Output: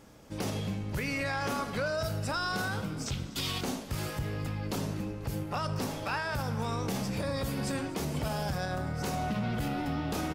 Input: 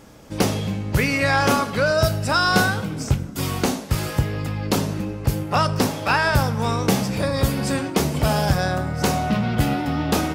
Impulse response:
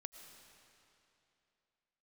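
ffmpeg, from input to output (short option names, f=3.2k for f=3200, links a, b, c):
-filter_complex "[0:a]asettb=1/sr,asplit=3[a][b][c];[a]atrim=end=3.064[d];[b]atrim=start=3.06:end=3.61,asetpts=PTS-STARTPTS,afade=t=in:d=0.004:c=qsin,afade=t=out:st=0.546:d=0.004:c=qsin,equalizer=f=3.6k:t=o:w=1.3:g=15[e];[c]atrim=start=3.606[f];[d][e]acrossfade=d=0.004:c1=hsin:c2=qsin[g];[g][f]acrossfade=d=0.004:c1=qsin:c2=hsin,alimiter=limit=-15dB:level=0:latency=1:release=63,asplit=5[h][i][j][k][l];[i]adelay=245,afreqshift=-120,volume=-19dB[m];[j]adelay=490,afreqshift=-240,volume=-24.7dB[n];[k]adelay=735,afreqshift=-360,volume=-30.4dB[o];[l]adelay=980,afreqshift=-480,volume=-36dB[p];[h][m][n][o][p]amix=inputs=5:normalize=0,volume=-8.5dB"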